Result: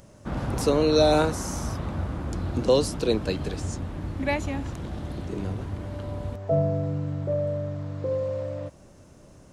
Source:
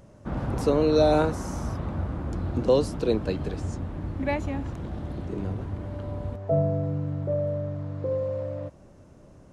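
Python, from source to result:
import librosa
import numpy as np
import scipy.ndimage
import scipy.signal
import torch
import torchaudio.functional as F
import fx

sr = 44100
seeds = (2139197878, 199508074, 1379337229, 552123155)

y = fx.high_shelf(x, sr, hz=2500.0, db=10.0)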